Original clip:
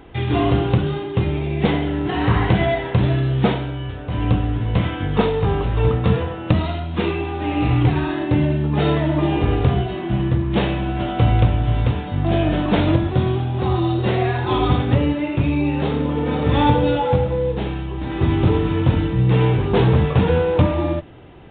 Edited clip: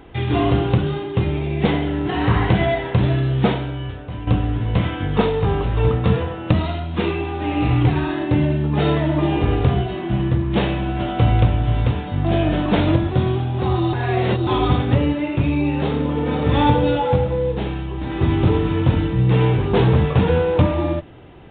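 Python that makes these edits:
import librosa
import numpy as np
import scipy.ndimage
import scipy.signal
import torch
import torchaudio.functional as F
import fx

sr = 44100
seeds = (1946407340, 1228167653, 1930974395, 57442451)

y = fx.edit(x, sr, fx.fade_out_to(start_s=3.87, length_s=0.4, floor_db=-11.5),
    fx.reverse_span(start_s=13.93, length_s=0.54), tone=tone)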